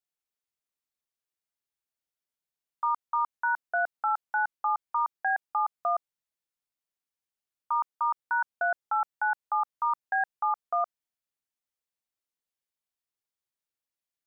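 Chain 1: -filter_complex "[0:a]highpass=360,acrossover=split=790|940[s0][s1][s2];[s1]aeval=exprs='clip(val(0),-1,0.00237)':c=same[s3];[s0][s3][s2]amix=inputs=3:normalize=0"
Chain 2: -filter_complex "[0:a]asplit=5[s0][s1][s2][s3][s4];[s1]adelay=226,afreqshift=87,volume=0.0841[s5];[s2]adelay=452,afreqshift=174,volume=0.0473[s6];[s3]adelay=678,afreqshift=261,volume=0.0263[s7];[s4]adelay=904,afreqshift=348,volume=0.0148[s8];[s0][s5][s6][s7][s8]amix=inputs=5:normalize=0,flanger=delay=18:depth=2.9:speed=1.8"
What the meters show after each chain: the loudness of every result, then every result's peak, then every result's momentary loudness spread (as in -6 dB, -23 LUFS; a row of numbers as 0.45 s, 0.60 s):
-30.5 LUFS, -32.5 LUFS; -19.5 dBFS, -19.5 dBFS; 3 LU, 4 LU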